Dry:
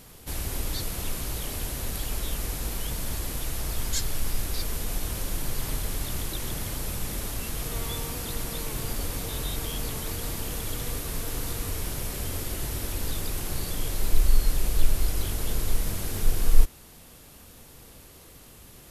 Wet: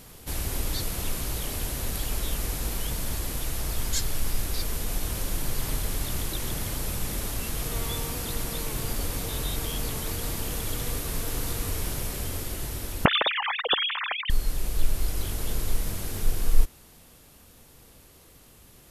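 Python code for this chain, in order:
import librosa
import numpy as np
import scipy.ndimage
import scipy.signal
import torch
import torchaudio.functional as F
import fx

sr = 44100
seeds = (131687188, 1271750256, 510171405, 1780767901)

y = fx.sine_speech(x, sr, at=(13.05, 14.3))
y = fx.rider(y, sr, range_db=4, speed_s=2.0)
y = F.gain(torch.from_numpy(y), -2.5).numpy()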